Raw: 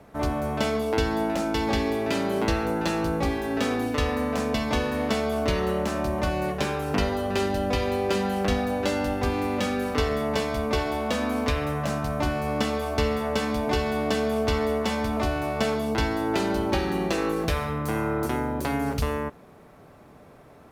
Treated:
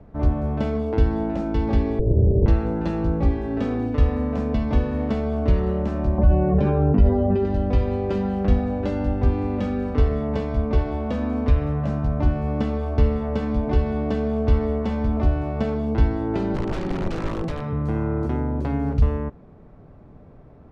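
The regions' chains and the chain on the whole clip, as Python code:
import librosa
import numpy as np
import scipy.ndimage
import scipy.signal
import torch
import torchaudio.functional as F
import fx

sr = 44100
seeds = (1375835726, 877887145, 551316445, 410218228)

y = fx.chain(x, sr, fx.lower_of_two(delay_ms=2.1),
    fx.steep_lowpass(hz=630.0, slope=36),
    fx.peak_eq(hz=81.0, db=14.0, octaves=2.9), at=(1.99, 2.46))
y = fx.chain(y, sr, fx.spec_expand(power=1.6),
    fx.env_flatten(amount_pct=100), at=(6.18, 7.45))
y = fx.chain(y, sr, fx.highpass(hz=120.0, slope=24),
    fx.overflow_wrap(gain_db=20.0), at=(16.55, 17.73))
y = scipy.signal.sosfilt(scipy.signal.butter(2, 6500.0, 'lowpass', fs=sr, output='sos'), y)
y = fx.tilt_eq(y, sr, slope=-4.0)
y = y * librosa.db_to_amplitude(-5.0)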